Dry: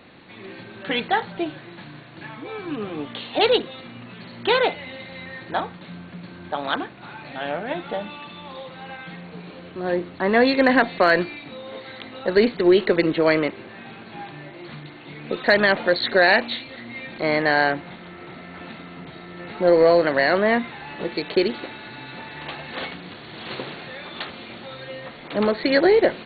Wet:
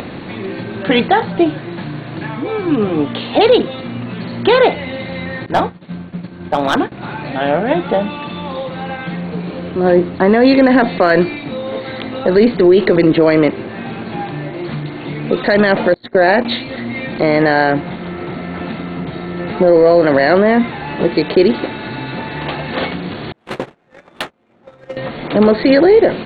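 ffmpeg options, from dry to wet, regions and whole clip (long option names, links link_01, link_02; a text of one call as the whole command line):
ffmpeg -i in.wav -filter_complex "[0:a]asettb=1/sr,asplit=3[link_01][link_02][link_03];[link_01]atrim=end=5.464[link_04];[link_02]atrim=start=5.46:end=6.92,asetpts=PTS-STARTPTS,afade=type=in:duration=0.004:curve=qsin,afade=type=out:start_time=1.456:duration=0.004:curve=qsin,agate=range=-33dB:threshold=-32dB:ratio=3:release=100:detection=peak,asoftclip=type=hard:threshold=-18.5dB[link_05];[link_03]atrim=start=6.916[link_06];[link_04][link_05]acrossfade=duration=0.004:curve1=hsin:curve2=qsin[link_07];[link_07][link_06]acrossfade=duration=0.004:curve1=qsin:curve2=hsin,asettb=1/sr,asplit=3[link_08][link_09][link_10];[link_08]atrim=end=15.944[link_11];[link_09]atrim=start=15.94:end=16.45,asetpts=PTS-STARTPTS,afade=type=in:duration=0.004:curve=qsin,afade=type=out:start_time=0.506:duration=0.004:curve=qsin,highshelf=frequency=2400:gain=-10.5,agate=range=-29dB:threshold=-29dB:ratio=16:release=100:detection=peak[link_12];[link_10]atrim=start=16.446[link_13];[link_11][link_12]acrossfade=duration=0.004:curve1=hsin:curve2=qsin[link_14];[link_14][link_13]acrossfade=duration=0.004:curve1=qsin:curve2=hsin,asettb=1/sr,asplit=3[link_15][link_16][link_17];[link_15]atrim=end=23.324[link_18];[link_16]atrim=start=23.32:end=24.97,asetpts=PTS-STARTPTS,afade=type=in:duration=0.004:curve=qsin,afade=type=out:start_time=1.646:duration=0.004:curve=qsin,lowshelf=frequency=330:gain=-7.5,adynamicsmooth=sensitivity=5:basefreq=940,agate=range=-35dB:threshold=-36dB:ratio=16:release=100:detection=peak[link_19];[link_17]atrim=start=24.966[link_20];[link_18][link_19]acrossfade=duration=0.004:curve1=hsin:curve2=qsin[link_21];[link_21][link_20]acrossfade=duration=0.004:curve1=qsin:curve2=hsin,tiltshelf=frequency=850:gain=4.5,acompressor=mode=upward:threshold=-32dB:ratio=2.5,alimiter=level_in=12.5dB:limit=-1dB:release=50:level=0:latency=1,volume=-1dB" out.wav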